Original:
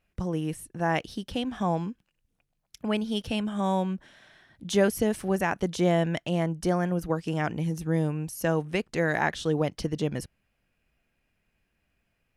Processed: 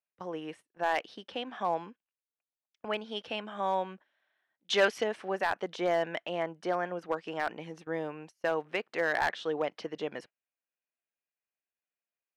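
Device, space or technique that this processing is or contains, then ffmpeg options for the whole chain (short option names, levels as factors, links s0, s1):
walkie-talkie: -filter_complex "[0:a]highpass=520,lowpass=3000,asoftclip=type=hard:threshold=0.0944,agate=range=0.1:threshold=0.00355:ratio=16:detection=peak,asettb=1/sr,asplit=3[s0][s1][s2];[s0]atrim=end=4.644[s3];[s1]atrim=start=4.64:end=5.04,asetpts=PTS-STARTPTS,afade=t=in:d=0.004:c=qsin,afade=t=out:st=0.396:d=0.004:c=qsin,equalizer=f=3900:w=0.34:g=9[s4];[s2]atrim=start=5.036[s5];[s3][s4]acrossfade=d=0.004:c1=hsin:c2=qsin[s6];[s6][s5]acrossfade=d=0.004:c1=qsin:c2=hsin"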